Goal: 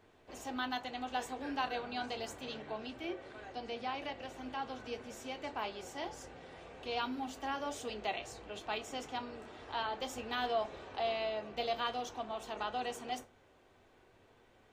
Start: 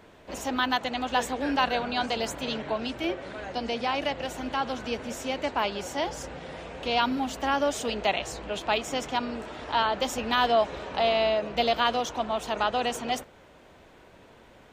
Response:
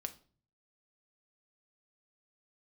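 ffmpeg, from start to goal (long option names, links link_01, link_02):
-filter_complex "[0:a]asettb=1/sr,asplit=3[link_01][link_02][link_03];[link_01]atrim=end=2.694[link_04];[link_02]atrim=start=2.69:end=4.84,asetpts=PTS-STARTPTS,afade=type=in:duration=0.004:curve=qsin,afade=type=out:start_time=2.146:duration=0.004:curve=qsin,acrossover=split=5300[link_05][link_06];[link_06]acompressor=threshold=-53dB:ratio=4:attack=1:release=60[link_07];[link_05][link_07]amix=inputs=2:normalize=0[link_08];[link_03]atrim=start=4.836[link_09];[link_04][link_08]acrossfade=duration=0.004:curve1=hsin:curve2=qsin[link_10];[link_10][link_09]acrossfade=duration=0.004:curve1=qsin:curve2=hsin[link_11];[1:a]atrim=start_sample=2205,asetrate=79380,aresample=44100[link_12];[link_11][link_12]afir=irnorm=-1:irlink=0,volume=-4.5dB"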